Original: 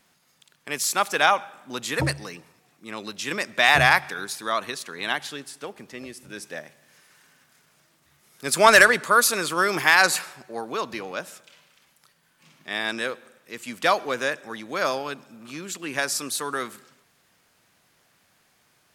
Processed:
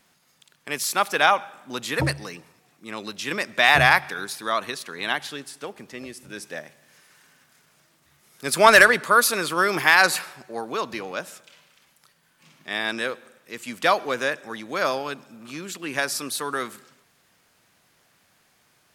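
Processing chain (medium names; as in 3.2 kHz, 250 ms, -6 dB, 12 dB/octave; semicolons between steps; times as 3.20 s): dynamic bell 7.2 kHz, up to -5 dB, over -42 dBFS, Q 1.8; trim +1 dB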